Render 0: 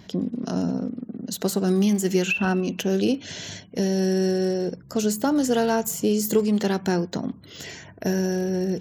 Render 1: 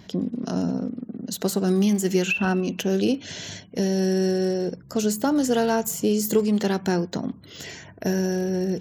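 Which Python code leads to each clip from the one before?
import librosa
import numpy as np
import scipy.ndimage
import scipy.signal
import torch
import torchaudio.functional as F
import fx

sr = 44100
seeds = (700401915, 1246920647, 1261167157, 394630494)

y = x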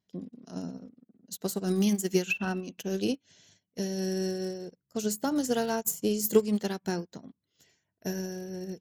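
y = fx.high_shelf(x, sr, hz=5200.0, db=8.5)
y = fx.upward_expand(y, sr, threshold_db=-40.0, expansion=2.5)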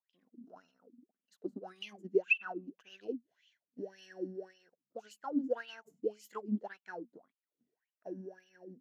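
y = fx.wah_lfo(x, sr, hz=1.8, low_hz=230.0, high_hz=3000.0, q=11.0)
y = y * librosa.db_to_amplitude(3.0)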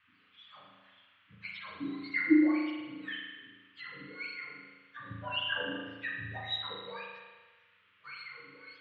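y = fx.octave_mirror(x, sr, pivot_hz=900.0)
y = fx.dmg_noise_band(y, sr, seeds[0], low_hz=1100.0, high_hz=3100.0, level_db=-73.0)
y = fx.rev_spring(y, sr, rt60_s=1.3, pass_ms=(36,), chirp_ms=30, drr_db=-2.0)
y = y * librosa.db_to_amplitude(2.0)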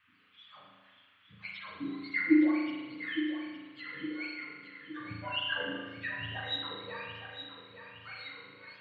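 y = fx.echo_feedback(x, sr, ms=864, feedback_pct=50, wet_db=-10.0)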